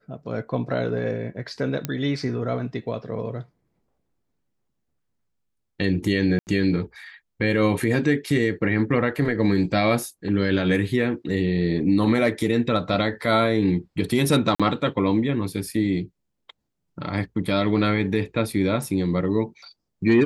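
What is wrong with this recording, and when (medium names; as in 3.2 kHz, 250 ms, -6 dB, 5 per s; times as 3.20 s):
1.85 s: pop -11 dBFS
6.39–6.47 s: dropout 79 ms
14.55–14.60 s: dropout 46 ms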